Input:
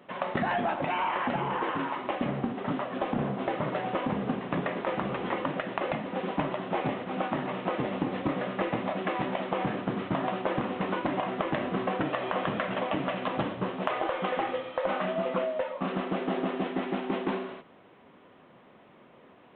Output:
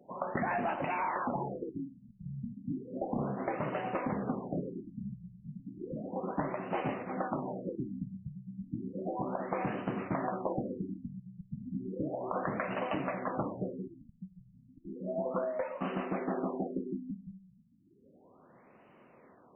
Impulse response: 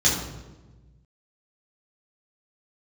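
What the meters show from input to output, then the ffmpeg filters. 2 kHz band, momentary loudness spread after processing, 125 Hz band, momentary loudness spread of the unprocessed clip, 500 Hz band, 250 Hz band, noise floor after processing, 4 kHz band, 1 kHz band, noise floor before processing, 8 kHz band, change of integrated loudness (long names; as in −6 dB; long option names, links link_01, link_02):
−8.5 dB, 12 LU, −4.0 dB, 3 LU, −6.0 dB, −5.0 dB, −62 dBFS, −17.0 dB, −6.5 dB, −56 dBFS, can't be measured, −6.0 dB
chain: -af "afftfilt=real='re*lt(b*sr/1024,200*pow(3100/200,0.5+0.5*sin(2*PI*0.33*pts/sr)))':imag='im*lt(b*sr/1024,200*pow(3100/200,0.5+0.5*sin(2*PI*0.33*pts/sr)))':win_size=1024:overlap=0.75,volume=-4dB"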